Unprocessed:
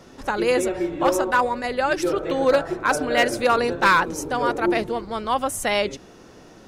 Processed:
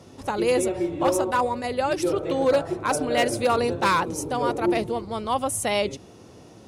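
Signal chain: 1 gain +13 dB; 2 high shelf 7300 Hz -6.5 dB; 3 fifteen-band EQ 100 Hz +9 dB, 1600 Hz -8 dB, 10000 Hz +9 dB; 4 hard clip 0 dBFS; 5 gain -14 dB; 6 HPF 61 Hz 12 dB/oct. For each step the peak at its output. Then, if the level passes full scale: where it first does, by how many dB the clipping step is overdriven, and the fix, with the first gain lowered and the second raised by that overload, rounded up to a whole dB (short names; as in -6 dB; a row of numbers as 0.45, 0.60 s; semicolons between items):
+2.5, +2.5, +4.0, 0.0, -14.0, -12.0 dBFS; step 1, 4.0 dB; step 1 +9 dB, step 5 -10 dB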